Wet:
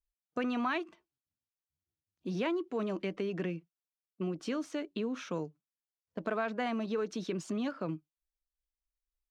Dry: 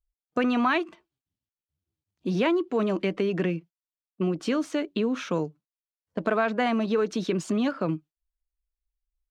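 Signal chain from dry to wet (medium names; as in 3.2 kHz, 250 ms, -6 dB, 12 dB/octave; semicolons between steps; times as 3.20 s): peaking EQ 5.7 kHz +3 dB 0.37 oct; trim -9 dB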